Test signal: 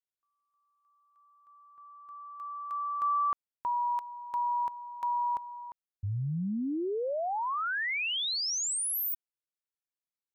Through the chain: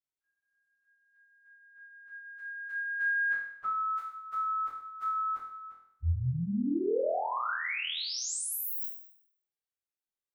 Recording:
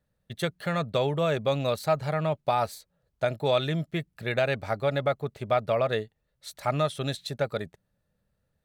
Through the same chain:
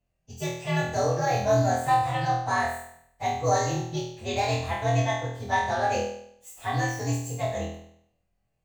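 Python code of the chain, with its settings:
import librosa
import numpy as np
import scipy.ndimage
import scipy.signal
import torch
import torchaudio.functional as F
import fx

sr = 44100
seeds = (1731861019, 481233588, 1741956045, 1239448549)

y = fx.partial_stretch(x, sr, pct=122)
y = fx.room_flutter(y, sr, wall_m=4.2, rt60_s=0.67)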